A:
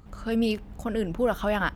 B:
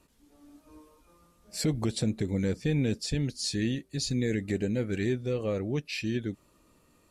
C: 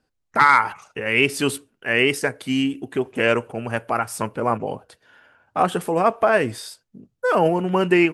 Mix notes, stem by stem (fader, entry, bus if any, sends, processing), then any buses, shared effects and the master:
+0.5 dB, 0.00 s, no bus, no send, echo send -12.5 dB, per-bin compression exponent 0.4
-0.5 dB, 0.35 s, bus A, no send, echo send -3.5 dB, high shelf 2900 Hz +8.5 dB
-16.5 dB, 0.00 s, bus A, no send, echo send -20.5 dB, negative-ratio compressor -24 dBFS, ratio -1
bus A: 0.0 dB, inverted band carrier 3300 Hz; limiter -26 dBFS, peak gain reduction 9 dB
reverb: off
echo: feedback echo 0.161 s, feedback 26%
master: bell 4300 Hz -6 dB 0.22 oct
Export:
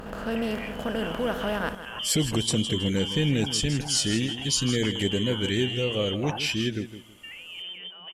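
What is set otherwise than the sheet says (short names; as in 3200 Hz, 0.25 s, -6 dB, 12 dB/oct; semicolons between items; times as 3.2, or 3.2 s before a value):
stem A +0.5 dB -> -6.5 dB; stem B -0.5 dB -> +6.0 dB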